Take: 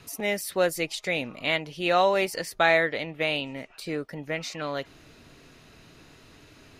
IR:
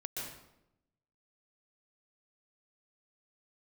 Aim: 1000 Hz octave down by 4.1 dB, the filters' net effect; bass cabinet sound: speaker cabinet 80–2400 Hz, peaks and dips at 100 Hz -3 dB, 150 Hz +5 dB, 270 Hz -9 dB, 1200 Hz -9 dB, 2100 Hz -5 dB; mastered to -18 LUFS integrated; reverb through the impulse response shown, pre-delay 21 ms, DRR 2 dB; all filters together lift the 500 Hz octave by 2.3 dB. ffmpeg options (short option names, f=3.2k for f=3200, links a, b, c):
-filter_complex "[0:a]equalizer=f=500:t=o:g=6,equalizer=f=1k:t=o:g=-7.5,asplit=2[a][b];[1:a]atrim=start_sample=2205,adelay=21[c];[b][c]afir=irnorm=-1:irlink=0,volume=-2.5dB[d];[a][d]amix=inputs=2:normalize=0,highpass=f=80:w=0.5412,highpass=f=80:w=1.3066,equalizer=f=100:t=q:w=4:g=-3,equalizer=f=150:t=q:w=4:g=5,equalizer=f=270:t=q:w=4:g=-9,equalizer=f=1.2k:t=q:w=4:g=-9,equalizer=f=2.1k:t=q:w=4:g=-5,lowpass=f=2.4k:w=0.5412,lowpass=f=2.4k:w=1.3066,volume=7dB"